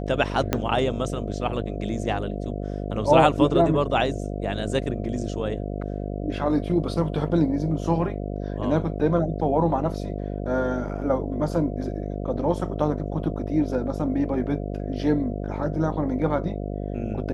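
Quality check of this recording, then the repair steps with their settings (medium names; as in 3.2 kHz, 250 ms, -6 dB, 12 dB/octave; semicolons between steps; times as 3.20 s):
buzz 50 Hz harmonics 14 -30 dBFS
0.53 s: pop -7 dBFS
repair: de-click; de-hum 50 Hz, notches 14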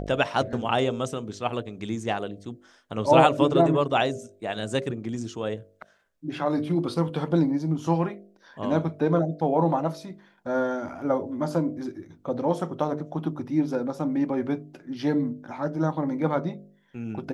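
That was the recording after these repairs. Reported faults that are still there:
0.53 s: pop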